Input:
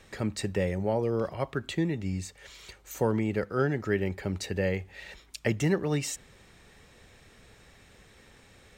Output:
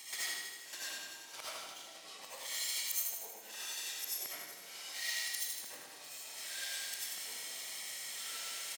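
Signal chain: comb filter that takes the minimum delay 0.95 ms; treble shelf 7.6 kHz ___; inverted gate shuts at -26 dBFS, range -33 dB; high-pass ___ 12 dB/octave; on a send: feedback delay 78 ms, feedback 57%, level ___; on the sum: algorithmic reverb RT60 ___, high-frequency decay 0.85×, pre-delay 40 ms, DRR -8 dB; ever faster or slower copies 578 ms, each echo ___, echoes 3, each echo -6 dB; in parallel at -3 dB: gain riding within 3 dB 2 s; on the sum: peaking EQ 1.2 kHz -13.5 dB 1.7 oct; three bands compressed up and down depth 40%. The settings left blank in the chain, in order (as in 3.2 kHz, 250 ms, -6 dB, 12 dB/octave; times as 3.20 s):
+10.5 dB, 890 Hz, -4 dB, 0.58 s, -3 st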